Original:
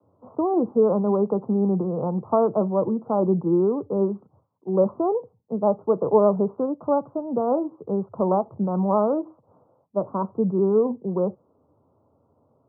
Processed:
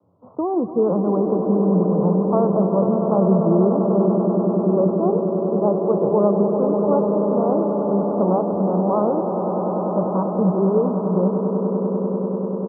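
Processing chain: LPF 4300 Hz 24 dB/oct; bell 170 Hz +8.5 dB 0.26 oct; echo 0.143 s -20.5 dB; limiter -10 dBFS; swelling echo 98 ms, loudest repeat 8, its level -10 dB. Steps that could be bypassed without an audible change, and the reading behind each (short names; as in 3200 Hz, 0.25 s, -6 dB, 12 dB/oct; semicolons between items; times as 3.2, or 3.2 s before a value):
LPF 4300 Hz: input band ends at 1300 Hz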